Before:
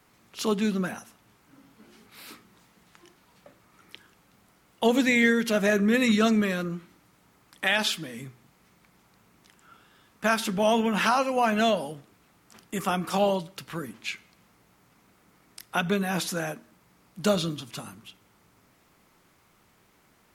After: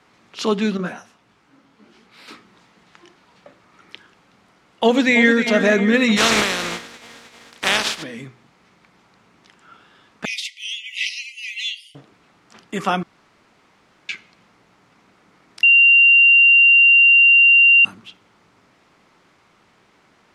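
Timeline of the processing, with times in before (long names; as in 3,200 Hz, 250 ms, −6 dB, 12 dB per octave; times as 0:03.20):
0:00.77–0:02.28: micro pitch shift up and down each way 57 cents
0:04.84–0:05.43: delay throw 310 ms, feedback 65%, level −9.5 dB
0:06.16–0:08.02: compressing power law on the bin magnitudes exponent 0.31
0:10.25–0:11.95: linear-phase brick-wall high-pass 1,900 Hz
0:13.03–0:14.09: fill with room tone
0:15.63–0:17.85: beep over 2,770 Hz −15 dBFS
whole clip: low-pass filter 5,200 Hz 12 dB per octave; low-shelf EQ 120 Hz −10.5 dB; level +7.5 dB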